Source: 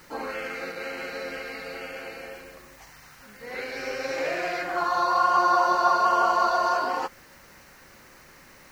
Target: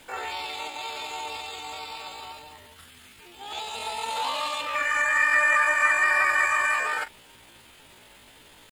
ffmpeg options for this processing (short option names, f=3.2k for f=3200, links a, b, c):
-af "asetrate=74167,aresample=44100,atempo=0.594604"